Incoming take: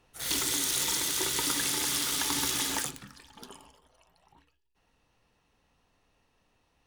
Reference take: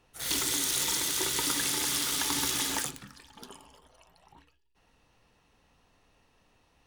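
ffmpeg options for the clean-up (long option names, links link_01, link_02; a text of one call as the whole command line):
ffmpeg -i in.wav -af "asetnsamples=nb_out_samples=441:pad=0,asendcmd='3.71 volume volume 4.5dB',volume=0dB" out.wav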